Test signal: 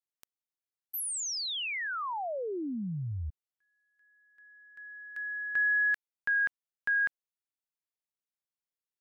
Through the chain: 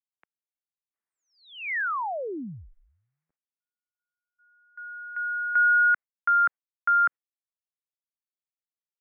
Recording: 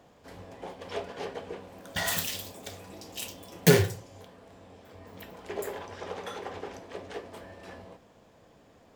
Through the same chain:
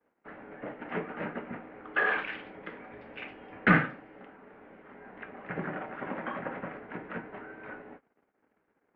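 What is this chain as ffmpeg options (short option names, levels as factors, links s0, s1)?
-af "agate=range=0.02:threshold=0.00251:ratio=3:release=60:detection=rms,highpass=f=440:t=q:w=0.5412,highpass=f=440:t=q:w=1.307,lowpass=f=2300:t=q:w=0.5176,lowpass=f=2300:t=q:w=0.7071,lowpass=f=2300:t=q:w=1.932,afreqshift=-240,tiltshelf=f=1100:g=-5,volume=2"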